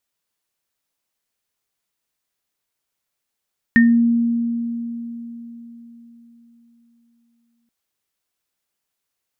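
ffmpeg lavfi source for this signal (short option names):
-f lavfi -i "aevalsrc='0.376*pow(10,-3*t/4.15)*sin(2*PI*234*t)+0.355*pow(10,-3*t/0.26)*sin(2*PI*1830*t)':d=3.93:s=44100"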